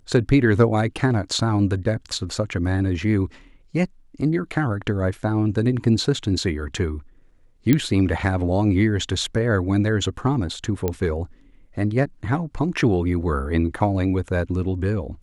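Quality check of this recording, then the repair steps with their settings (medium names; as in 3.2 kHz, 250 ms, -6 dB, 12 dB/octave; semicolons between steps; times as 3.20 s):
7.73 s: pop -5 dBFS
10.88 s: pop -10 dBFS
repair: de-click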